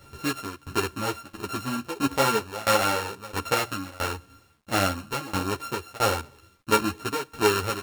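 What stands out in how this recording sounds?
a buzz of ramps at a fixed pitch in blocks of 32 samples
tremolo saw down 1.5 Hz, depth 95%
a quantiser's noise floor 12 bits, dither none
a shimmering, thickened sound

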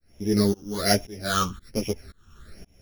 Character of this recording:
a buzz of ramps at a fixed pitch in blocks of 8 samples
phaser sweep stages 8, 1.2 Hz, lowest notch 620–1,300 Hz
tremolo saw up 1.9 Hz, depth 100%
a shimmering, thickened sound

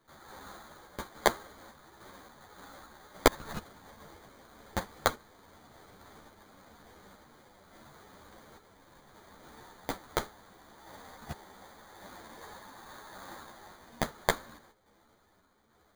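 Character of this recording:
sample-and-hold tremolo
aliases and images of a low sample rate 2,700 Hz, jitter 0%
a shimmering, thickened sound

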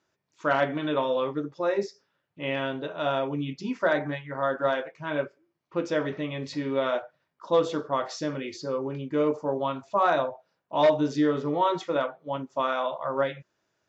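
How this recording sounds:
background noise floor −78 dBFS
spectral slope −4.0 dB per octave

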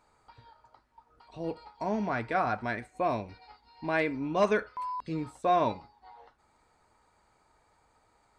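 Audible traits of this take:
background noise floor −69 dBFS
spectral slope −4.5 dB per octave

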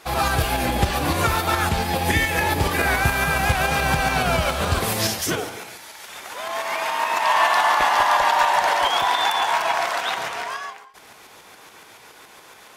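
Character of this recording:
tremolo saw up 7.1 Hz, depth 40%

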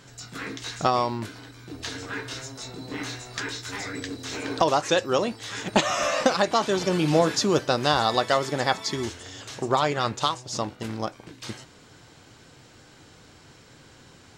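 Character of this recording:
background noise floor −52 dBFS
spectral slope −4.0 dB per octave

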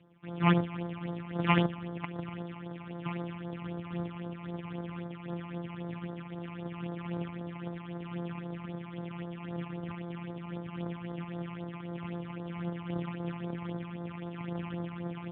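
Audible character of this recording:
a buzz of ramps at a fixed pitch in blocks of 256 samples
phaser sweep stages 8, 3.8 Hz, lowest notch 460–2,700 Hz
AMR narrowband

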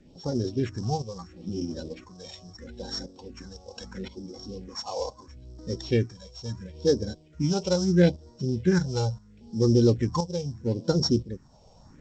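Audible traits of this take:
a buzz of ramps at a fixed pitch in blocks of 8 samples
phaser sweep stages 4, 0.75 Hz, lowest notch 280–2,600 Hz
tremolo saw up 0.98 Hz, depth 65%
G.722

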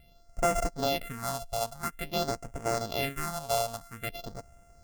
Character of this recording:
a buzz of ramps at a fixed pitch in blocks of 64 samples
phaser sweep stages 4, 0.49 Hz, lowest notch 300–3,800 Hz

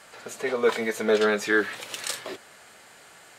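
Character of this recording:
background noise floor −51 dBFS
spectral slope −2.5 dB per octave

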